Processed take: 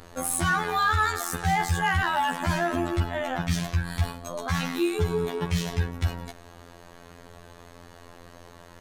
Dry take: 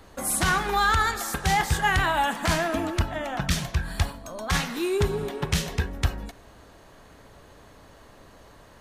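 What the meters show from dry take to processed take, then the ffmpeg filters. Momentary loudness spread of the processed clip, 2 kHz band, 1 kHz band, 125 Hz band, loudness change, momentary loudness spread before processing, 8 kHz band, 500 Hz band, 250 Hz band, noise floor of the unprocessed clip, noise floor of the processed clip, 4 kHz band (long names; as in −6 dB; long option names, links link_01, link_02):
7 LU, −1.5 dB, −1.0 dB, +0.5 dB, −1.0 dB, 8 LU, −3.0 dB, −1.0 dB, +1.0 dB, −51 dBFS, −49 dBFS, −4.0 dB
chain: -filter_complex "[0:a]asplit=2[link_01][link_02];[link_02]alimiter=limit=-21dB:level=0:latency=1,volume=0dB[link_03];[link_01][link_03]amix=inputs=2:normalize=0,afftfilt=real='hypot(re,im)*cos(PI*b)':imag='0':win_size=2048:overlap=0.75,asoftclip=type=tanh:threshold=-11.5dB"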